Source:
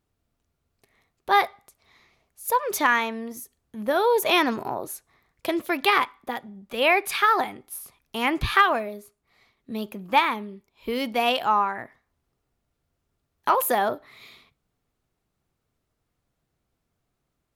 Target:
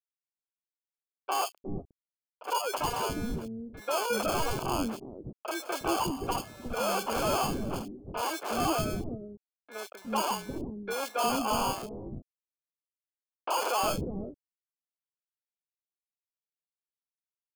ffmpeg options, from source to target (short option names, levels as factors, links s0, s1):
-filter_complex "[0:a]asettb=1/sr,asplit=3[s0][s1][s2];[s0]atrim=end=5.624[s3];[s1]atrim=start=5.62:end=7.75,asetpts=PTS-STARTPTS,afade=t=in:d=0.004:c=qsin,afade=t=out:st=2.126:d=0.004:c=qsin,aeval=exprs='val(0)+0.5*0.0188*sgn(val(0))':c=same[s4];[s2]atrim=start=7.746[s5];[s3][s4]acrossfade=d=0.004:c1=hsin:c2=qsin[s6];[s6][s5]acrossfade=d=0.004:c1=qsin:c2=hsin,highpass=f=270:p=1,afftfilt=real='re*gte(hypot(re,im),0.02)':imag='im*gte(hypot(re,im),0.02)':win_size=1024:overlap=0.75,adynamicequalizer=threshold=0.00891:dfrequency=3600:dqfactor=4.7:tfrequency=3600:tqfactor=4.7:attack=5:release=100:ratio=0.375:range=1.5:mode=boostabove:tftype=bell,alimiter=limit=0.178:level=0:latency=1:release=21,acrusher=samples=23:mix=1:aa=0.000001,aeval=exprs='0.0841*(abs(mod(val(0)/0.0841+3,4)-2)-1)':c=same,acrusher=bits=7:mix=0:aa=0.000001,acrossover=split=410|2800[s7][s8][s9];[s9]adelay=30[s10];[s7]adelay=360[s11];[s11][s8][s10]amix=inputs=3:normalize=0"